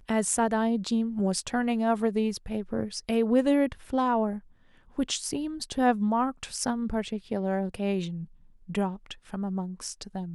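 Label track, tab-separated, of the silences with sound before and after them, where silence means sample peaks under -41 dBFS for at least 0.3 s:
4.390000	4.980000	silence
8.250000	8.690000	silence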